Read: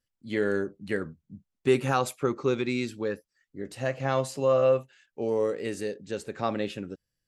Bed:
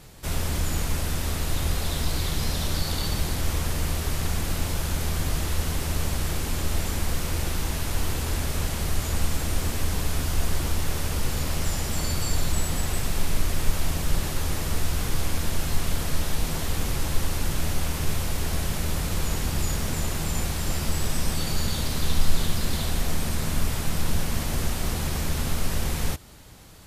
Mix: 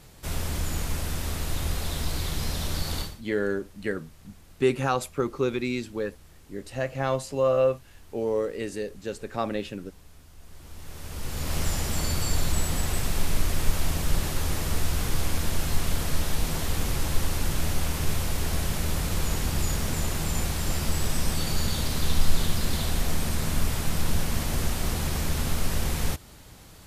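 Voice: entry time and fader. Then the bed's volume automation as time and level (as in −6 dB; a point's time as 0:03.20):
2.95 s, 0.0 dB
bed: 0:03.01 −3 dB
0:03.22 −25.5 dB
0:10.38 −25.5 dB
0:11.57 −0.5 dB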